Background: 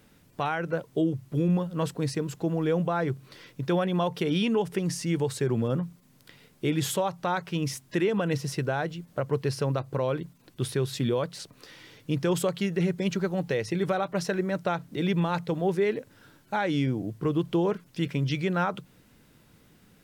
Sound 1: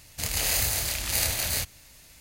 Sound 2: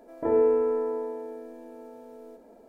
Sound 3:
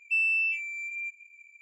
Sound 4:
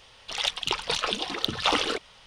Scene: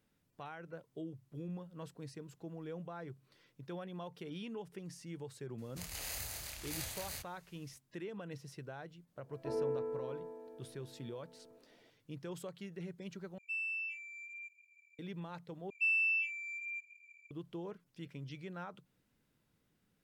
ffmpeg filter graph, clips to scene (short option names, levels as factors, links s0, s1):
-filter_complex "[3:a]asplit=2[s0][s1];[0:a]volume=0.112[s2];[1:a]equalizer=f=1200:t=o:w=1.2:g=3[s3];[s1]equalizer=f=3600:w=1.4:g=11[s4];[s2]asplit=3[s5][s6][s7];[s5]atrim=end=13.384[s8];[s0]atrim=end=1.61,asetpts=PTS-STARTPTS,volume=0.224[s9];[s6]atrim=start=14.986:end=15.704[s10];[s4]atrim=end=1.61,asetpts=PTS-STARTPTS,volume=0.266[s11];[s7]atrim=start=17.306[s12];[s3]atrim=end=2.2,asetpts=PTS-STARTPTS,volume=0.141,afade=t=in:d=0.004:c=hsin,afade=t=out:st=2.196:d=0.004:c=hsin,adelay=5580[s13];[2:a]atrim=end=2.68,asetpts=PTS-STARTPTS,volume=0.188,afade=t=in:d=0.004:c=hsin,afade=t=out:st=2.676:d=0.004:c=hsin,adelay=406602S[s14];[s8][s9]acrossfade=d=0.004:c1=hsin:c2=hsin[s15];[s15][s10]acrossfade=d=0.004:c1=hsin:c2=hsin[s16];[s16][s11]acrossfade=d=0.004:c1=hsin:c2=hsin[s17];[s17][s12]acrossfade=d=0.004:c1=hsin:c2=hsin[s18];[s18][s13][s14]amix=inputs=3:normalize=0"